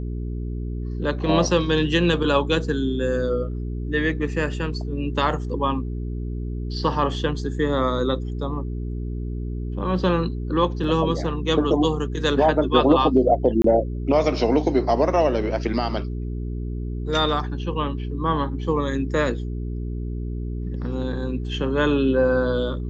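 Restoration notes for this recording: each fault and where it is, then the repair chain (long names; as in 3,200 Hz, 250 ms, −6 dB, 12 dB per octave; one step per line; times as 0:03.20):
mains hum 60 Hz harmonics 7 −28 dBFS
0:10.84: drop-out 2.8 ms
0:13.62–0:13.64: drop-out 23 ms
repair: hum removal 60 Hz, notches 7
repair the gap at 0:10.84, 2.8 ms
repair the gap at 0:13.62, 23 ms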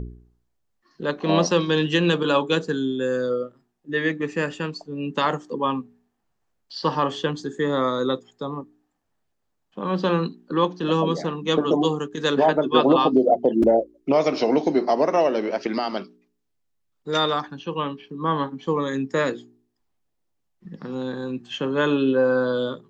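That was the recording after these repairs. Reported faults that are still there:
none of them is left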